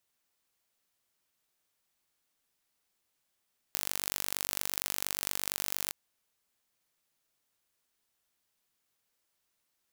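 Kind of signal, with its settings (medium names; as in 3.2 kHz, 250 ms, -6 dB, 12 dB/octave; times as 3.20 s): pulse train 48.6 per s, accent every 2, -4 dBFS 2.18 s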